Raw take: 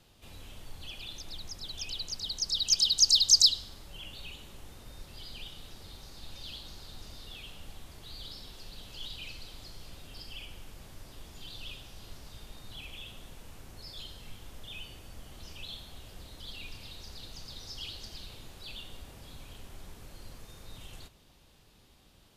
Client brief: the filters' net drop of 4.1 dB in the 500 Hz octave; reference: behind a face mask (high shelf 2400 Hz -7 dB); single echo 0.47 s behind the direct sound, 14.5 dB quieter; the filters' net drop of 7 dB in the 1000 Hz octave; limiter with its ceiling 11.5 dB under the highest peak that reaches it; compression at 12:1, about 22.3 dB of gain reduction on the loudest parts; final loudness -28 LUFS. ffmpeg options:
-af "equalizer=f=500:t=o:g=-3,equalizer=f=1k:t=o:g=-7,acompressor=threshold=-40dB:ratio=12,alimiter=level_in=18.5dB:limit=-24dB:level=0:latency=1,volume=-18.5dB,highshelf=f=2.4k:g=-7,aecho=1:1:470:0.188,volume=27.5dB"

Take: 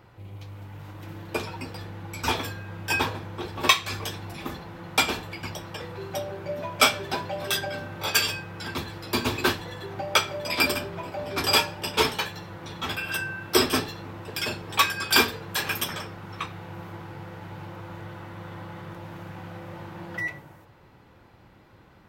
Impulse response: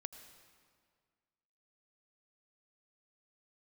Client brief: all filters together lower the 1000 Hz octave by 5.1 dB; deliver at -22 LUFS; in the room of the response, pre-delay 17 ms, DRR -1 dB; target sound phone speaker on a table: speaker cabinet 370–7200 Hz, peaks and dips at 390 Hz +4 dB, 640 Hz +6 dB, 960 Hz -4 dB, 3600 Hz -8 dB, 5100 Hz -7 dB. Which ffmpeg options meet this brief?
-filter_complex "[0:a]equalizer=f=1k:t=o:g=-5.5,asplit=2[a][b];[1:a]atrim=start_sample=2205,adelay=17[c];[b][c]afir=irnorm=-1:irlink=0,volume=4.5dB[d];[a][d]amix=inputs=2:normalize=0,highpass=f=370:w=0.5412,highpass=f=370:w=1.3066,equalizer=f=390:t=q:w=4:g=4,equalizer=f=640:t=q:w=4:g=6,equalizer=f=960:t=q:w=4:g=-4,equalizer=f=3.6k:t=q:w=4:g=-8,equalizer=f=5.1k:t=q:w=4:g=-7,lowpass=f=7.2k:w=0.5412,lowpass=f=7.2k:w=1.3066,volume=4.5dB"

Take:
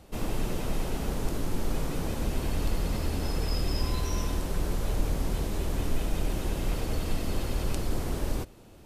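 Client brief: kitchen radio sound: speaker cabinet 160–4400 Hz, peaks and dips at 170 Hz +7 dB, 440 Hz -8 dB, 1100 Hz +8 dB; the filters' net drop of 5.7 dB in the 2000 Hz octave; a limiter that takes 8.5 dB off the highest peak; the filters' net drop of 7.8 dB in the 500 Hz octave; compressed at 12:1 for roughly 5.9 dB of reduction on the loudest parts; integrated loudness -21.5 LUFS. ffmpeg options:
-af "equalizer=f=500:t=o:g=-6,equalizer=f=2k:t=o:g=-8,acompressor=threshold=-27dB:ratio=12,alimiter=level_in=3.5dB:limit=-24dB:level=0:latency=1,volume=-3.5dB,highpass=160,equalizer=f=170:t=q:w=4:g=7,equalizer=f=440:t=q:w=4:g=-8,equalizer=f=1.1k:t=q:w=4:g=8,lowpass=f=4.4k:w=0.5412,lowpass=f=4.4k:w=1.3066,volume=22dB"

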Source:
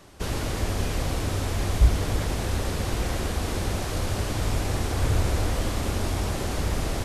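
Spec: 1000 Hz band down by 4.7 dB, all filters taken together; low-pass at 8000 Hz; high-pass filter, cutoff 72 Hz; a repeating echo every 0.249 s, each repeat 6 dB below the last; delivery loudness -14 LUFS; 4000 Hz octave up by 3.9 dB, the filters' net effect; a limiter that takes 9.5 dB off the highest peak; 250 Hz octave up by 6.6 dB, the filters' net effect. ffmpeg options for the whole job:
-af "highpass=72,lowpass=8k,equalizer=f=250:t=o:g=9,equalizer=f=1k:t=o:g=-7.5,equalizer=f=4k:t=o:g=5.5,alimiter=limit=-19dB:level=0:latency=1,aecho=1:1:249|498|747|996|1245|1494:0.501|0.251|0.125|0.0626|0.0313|0.0157,volume=13.5dB"

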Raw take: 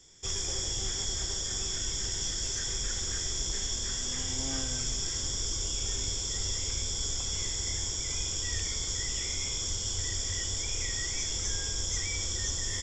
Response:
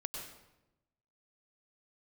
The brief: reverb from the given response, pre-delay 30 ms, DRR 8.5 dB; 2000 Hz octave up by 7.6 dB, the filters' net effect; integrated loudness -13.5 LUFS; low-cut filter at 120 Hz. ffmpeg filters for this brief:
-filter_complex "[0:a]highpass=120,equalizer=f=2k:t=o:g=8.5,asplit=2[a][b];[1:a]atrim=start_sample=2205,adelay=30[c];[b][c]afir=irnorm=-1:irlink=0,volume=-8.5dB[d];[a][d]amix=inputs=2:normalize=0,volume=16dB"

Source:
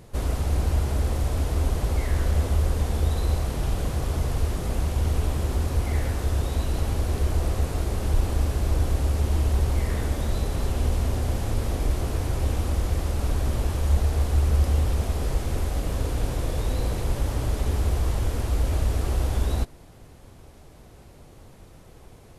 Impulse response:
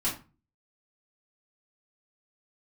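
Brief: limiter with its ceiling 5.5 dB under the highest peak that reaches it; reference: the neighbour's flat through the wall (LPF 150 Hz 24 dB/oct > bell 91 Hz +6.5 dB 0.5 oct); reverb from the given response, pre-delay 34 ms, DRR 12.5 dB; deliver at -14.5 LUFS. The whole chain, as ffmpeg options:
-filter_complex "[0:a]alimiter=limit=-16dB:level=0:latency=1,asplit=2[a][b];[1:a]atrim=start_sample=2205,adelay=34[c];[b][c]afir=irnorm=-1:irlink=0,volume=-19.5dB[d];[a][d]amix=inputs=2:normalize=0,lowpass=f=150:w=0.5412,lowpass=f=150:w=1.3066,equalizer=f=91:t=o:w=0.5:g=6.5,volume=10dB"

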